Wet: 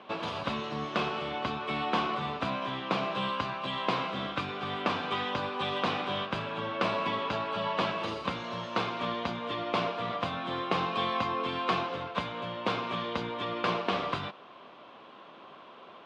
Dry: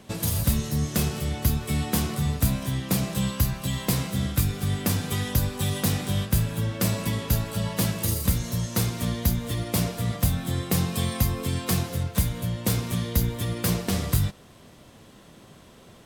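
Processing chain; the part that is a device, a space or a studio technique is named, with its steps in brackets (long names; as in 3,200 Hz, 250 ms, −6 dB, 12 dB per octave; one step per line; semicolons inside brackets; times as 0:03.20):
phone earpiece (loudspeaker in its box 470–3,100 Hz, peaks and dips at 480 Hz −3 dB, 1,100 Hz +6 dB, 1,900 Hz −8 dB)
level +5 dB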